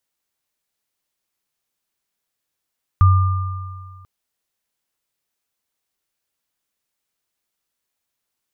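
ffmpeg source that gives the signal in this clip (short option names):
-f lavfi -i "aevalsrc='0.447*pow(10,-3*t/1.79)*sin(2*PI*93.6*t)+0.141*pow(10,-3*t/2.06)*sin(2*PI*1200*t)':d=1.04:s=44100"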